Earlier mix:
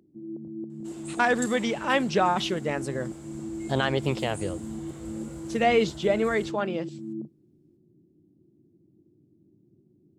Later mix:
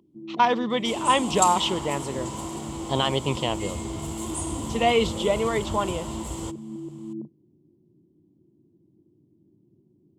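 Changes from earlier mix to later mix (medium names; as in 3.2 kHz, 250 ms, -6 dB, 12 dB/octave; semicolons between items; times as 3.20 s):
speech: entry -0.80 s; second sound +11.0 dB; master: add graphic EQ with 31 bands 1 kHz +11 dB, 1.6 kHz -11 dB, 3.15 kHz +9 dB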